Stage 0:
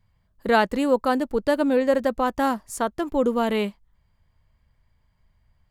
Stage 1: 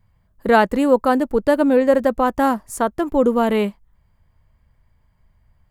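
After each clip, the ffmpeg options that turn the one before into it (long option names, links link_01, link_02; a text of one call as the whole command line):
ffmpeg -i in.wav -af "equalizer=frequency=4300:width_type=o:width=1.8:gain=-6.5,volume=5.5dB" out.wav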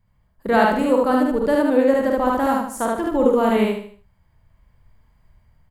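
ffmpeg -i in.wav -filter_complex "[0:a]asplit=2[link_01][link_02];[link_02]aecho=0:1:75|150|225|300:0.447|0.165|0.0612|0.0226[link_03];[link_01][link_03]amix=inputs=2:normalize=0,dynaudnorm=framelen=440:gausssize=5:maxgain=7.5dB,asplit=2[link_04][link_05];[link_05]aecho=0:1:48|75:0.596|0.473[link_06];[link_04][link_06]amix=inputs=2:normalize=0,volume=-5dB" out.wav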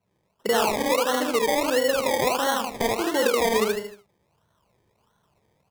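ffmpeg -i in.wav -af "highpass=200,equalizer=frequency=270:width_type=q:width=4:gain=-7,equalizer=frequency=430:width_type=q:width=4:gain=7,equalizer=frequency=990:width_type=q:width=4:gain=6,equalizer=frequency=1700:width_type=q:width=4:gain=-8,equalizer=frequency=2700:width_type=q:width=4:gain=-8,lowpass=frequency=7200:width=0.5412,lowpass=frequency=7200:width=1.3066,acrusher=samples=25:mix=1:aa=0.000001:lfo=1:lforange=15:lforate=1.5,acompressor=threshold=-21dB:ratio=3" out.wav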